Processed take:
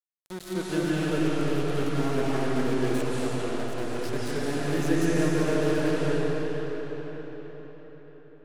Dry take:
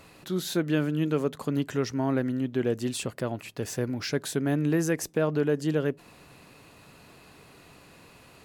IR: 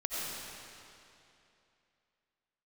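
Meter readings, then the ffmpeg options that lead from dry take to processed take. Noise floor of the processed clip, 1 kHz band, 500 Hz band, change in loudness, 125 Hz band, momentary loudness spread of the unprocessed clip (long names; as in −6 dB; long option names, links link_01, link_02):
−48 dBFS, +4.5 dB, +1.5 dB, +0.5 dB, +0.5 dB, 7 LU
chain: -filter_complex "[0:a]bandreject=frequency=60.49:width_type=h:width=4,bandreject=frequency=120.98:width_type=h:width=4,bandreject=frequency=181.47:width_type=h:width=4,bandreject=frequency=241.96:width_type=h:width=4,bandreject=frequency=302.45:width_type=h:width=4,aeval=exprs='val(0)*gte(abs(val(0)),0.0376)':channel_layout=same[link_01];[1:a]atrim=start_sample=2205,asetrate=23373,aresample=44100[link_02];[link_01][link_02]afir=irnorm=-1:irlink=0,volume=-8.5dB"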